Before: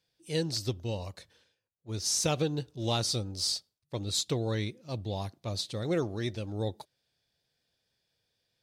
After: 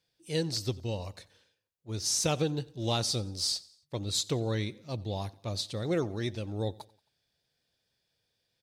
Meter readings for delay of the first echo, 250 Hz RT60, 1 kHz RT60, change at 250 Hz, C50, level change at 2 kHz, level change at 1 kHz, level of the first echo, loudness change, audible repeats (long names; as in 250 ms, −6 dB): 90 ms, no reverb audible, no reverb audible, 0.0 dB, no reverb audible, 0.0 dB, 0.0 dB, −23.0 dB, 0.0 dB, 2